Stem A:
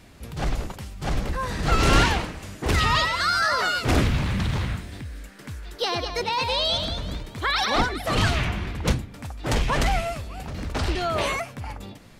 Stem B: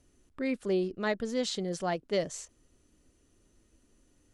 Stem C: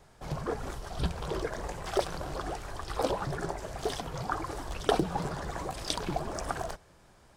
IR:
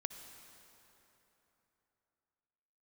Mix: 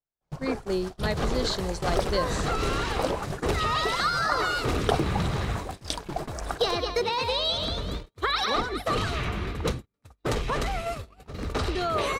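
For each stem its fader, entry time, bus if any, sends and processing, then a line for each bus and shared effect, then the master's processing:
−2.5 dB, 0.80 s, send −11.5 dB, downward compressor 16 to 1, threshold −24 dBFS, peak gain reduction 12.5 dB; hollow resonant body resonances 430/1,200/3,900 Hz, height 8 dB, ringing for 20 ms
−0.5 dB, 0.00 s, send −17 dB, parametric band 4,300 Hz +9.5 dB 0.23 octaves
+1.5 dB, 0.00 s, no send, mains-hum notches 60/120/180/240/300/360/420 Hz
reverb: on, RT60 3.4 s, pre-delay 53 ms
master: noise gate −31 dBFS, range −43 dB

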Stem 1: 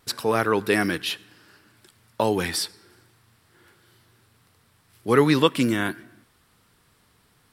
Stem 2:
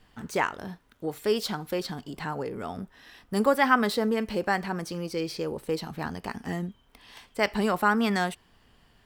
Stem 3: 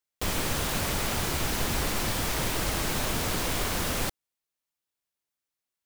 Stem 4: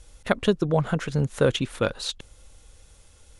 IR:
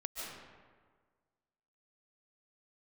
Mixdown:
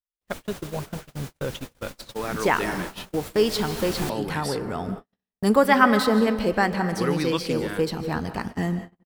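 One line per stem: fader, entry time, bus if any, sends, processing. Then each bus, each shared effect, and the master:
−8.5 dB, 1.90 s, no send, no processing
+1.5 dB, 2.10 s, send −6 dB, low-shelf EQ 160 Hz +6 dB
−3.0 dB, 0.00 s, no send, automatic ducking −8 dB, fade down 0.25 s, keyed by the fourth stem
−10.5 dB, 0.00 s, send −9 dB, notch filter 450 Hz, Q 12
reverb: on, RT60 1.6 s, pre-delay 105 ms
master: noise gate −32 dBFS, range −51 dB

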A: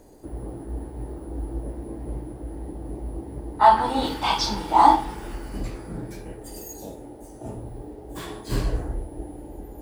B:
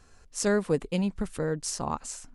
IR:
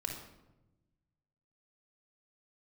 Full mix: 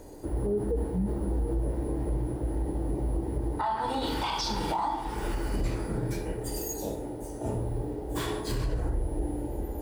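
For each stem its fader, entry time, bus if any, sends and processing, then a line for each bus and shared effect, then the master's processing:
+1.0 dB, 0.00 s, send −6.5 dB, downward compressor 6 to 1, threshold −27 dBFS, peak gain reduction 16.5 dB
−2.0 dB, 0.00 s, send −10 dB, every bin expanded away from the loudest bin 4 to 1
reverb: on, RT60 1.0 s, pre-delay 26 ms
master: brickwall limiter −21 dBFS, peak gain reduction 10.5 dB

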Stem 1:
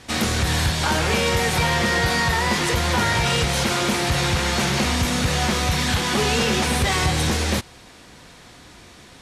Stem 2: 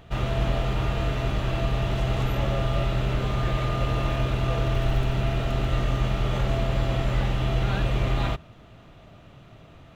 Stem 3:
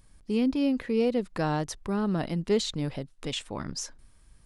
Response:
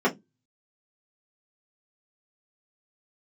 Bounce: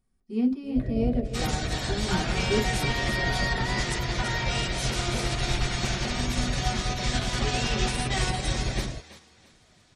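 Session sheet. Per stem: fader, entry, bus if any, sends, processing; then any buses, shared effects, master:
−8.0 dB, 1.25 s, send −20 dB, echo send −8 dB, gate on every frequency bin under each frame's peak −25 dB strong; spectral tilt +2 dB per octave
−1.0 dB, 0.65 s, no send, no echo send, Butterworth low-pass 660 Hz 72 dB per octave; reverb reduction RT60 0.79 s
−8.0 dB, 0.00 s, send −13 dB, echo send −3.5 dB, hum removal 209.6 Hz, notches 29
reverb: on, RT60 0.15 s, pre-delay 3 ms
echo: repeating echo 334 ms, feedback 34%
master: expander for the loud parts 1.5 to 1, over −40 dBFS

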